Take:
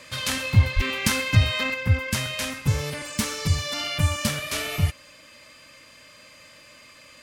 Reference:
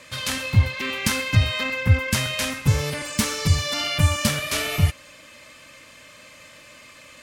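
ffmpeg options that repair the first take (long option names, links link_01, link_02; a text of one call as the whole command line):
ffmpeg -i in.wav -filter_complex "[0:a]bandreject=frequency=4800:width=30,asplit=3[link_01][link_02][link_03];[link_01]afade=type=out:start_time=0.75:duration=0.02[link_04];[link_02]highpass=frequency=140:width=0.5412,highpass=frequency=140:width=1.3066,afade=type=in:start_time=0.75:duration=0.02,afade=type=out:start_time=0.87:duration=0.02[link_05];[link_03]afade=type=in:start_time=0.87:duration=0.02[link_06];[link_04][link_05][link_06]amix=inputs=3:normalize=0,asetnsamples=nb_out_samples=441:pad=0,asendcmd='1.74 volume volume 3.5dB',volume=0dB" out.wav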